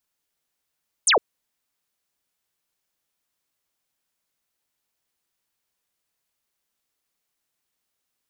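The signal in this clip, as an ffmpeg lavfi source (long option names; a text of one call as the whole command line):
ffmpeg -f lavfi -i "aevalsrc='0.2*clip(t/0.002,0,1)*clip((0.11-t)/0.002,0,1)*sin(2*PI*10000*0.11/log(360/10000)*(exp(log(360/10000)*t/0.11)-1))':duration=0.11:sample_rate=44100" out.wav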